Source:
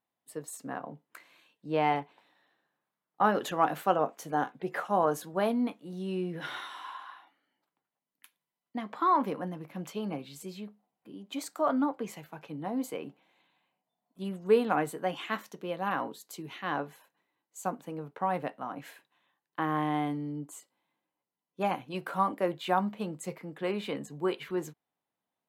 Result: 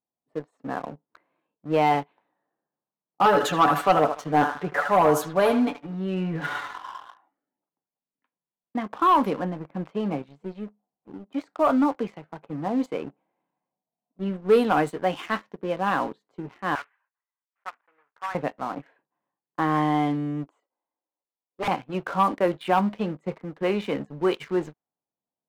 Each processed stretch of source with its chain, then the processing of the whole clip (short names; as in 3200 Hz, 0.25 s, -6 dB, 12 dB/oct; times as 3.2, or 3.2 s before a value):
3.25–6.78 comb 6.9 ms, depth 70% + narrowing echo 77 ms, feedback 41%, band-pass 1500 Hz, level -6 dB
16.75–18.35 block floating point 3-bit + Butterworth band-pass 1800 Hz, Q 1.2
20.47–21.68 HPF 420 Hz + wrapped overs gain 27.5 dB
whole clip: low-pass opened by the level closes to 820 Hz, open at -22.5 dBFS; sample leveller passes 2